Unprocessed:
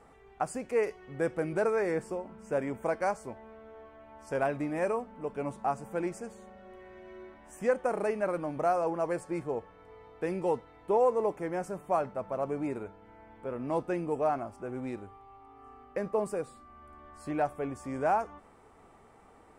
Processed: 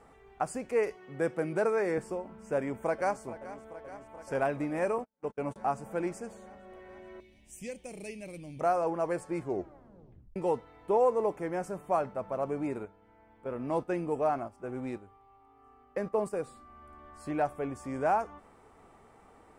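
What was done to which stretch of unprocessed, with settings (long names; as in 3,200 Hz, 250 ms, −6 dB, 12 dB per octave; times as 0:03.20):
0:00.95–0:01.98: high-pass filter 120 Hz 24 dB per octave
0:02.55–0:03.21: delay throw 430 ms, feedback 80%, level −15.5 dB
0:04.98–0:05.56: noise gate −40 dBFS, range −41 dB
0:07.20–0:08.61: drawn EQ curve 120 Hz 0 dB, 640 Hz −17 dB, 1,400 Hz −30 dB, 2,300 Hz 0 dB, 3,600 Hz +3 dB
0:09.40: tape stop 0.96 s
0:12.85–0:16.36: noise gate −41 dBFS, range −7 dB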